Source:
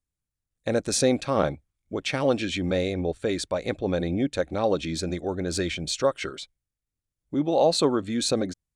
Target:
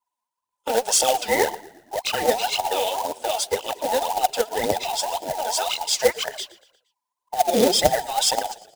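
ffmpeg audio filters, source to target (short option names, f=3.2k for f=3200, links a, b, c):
-filter_complex "[0:a]afftfilt=real='real(if(between(b,1,1008),(2*floor((b-1)/48)+1)*48-b,b),0)':imag='imag(if(between(b,1,1008),(2*floor((b-1)/48)+1)*48-b,b),0)*if(between(b,1,1008),-1,1)':win_size=2048:overlap=0.75,highpass=60,aphaser=in_gain=1:out_gain=1:delay=4.8:decay=0.71:speed=1.9:type=triangular,acrusher=bits=3:mode=log:mix=0:aa=0.000001,asplit=5[a][b][c][d][e];[b]adelay=117,afreqshift=-36,volume=-20dB[f];[c]adelay=234,afreqshift=-72,volume=-25.7dB[g];[d]adelay=351,afreqshift=-108,volume=-31.4dB[h];[e]adelay=468,afreqshift=-144,volume=-37dB[i];[a][f][g][h][i]amix=inputs=5:normalize=0,adynamicequalizer=threshold=0.0112:dfrequency=2800:dqfactor=0.7:tfrequency=2800:tqfactor=0.7:attack=5:release=100:ratio=0.375:range=3:mode=boostabove:tftype=highshelf,volume=-1.5dB"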